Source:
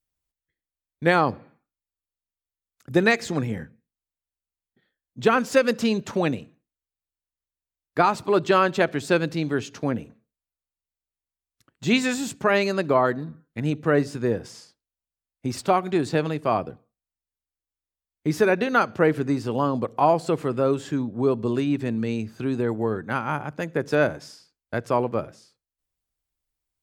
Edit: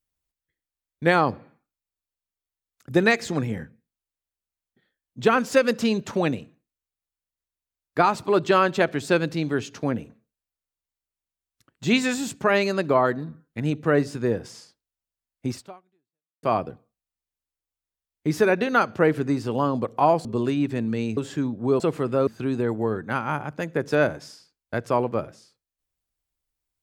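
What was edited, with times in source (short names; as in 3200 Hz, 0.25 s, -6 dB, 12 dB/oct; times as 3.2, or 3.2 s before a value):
15.51–16.43 fade out exponential
20.25–20.72 swap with 21.35–22.27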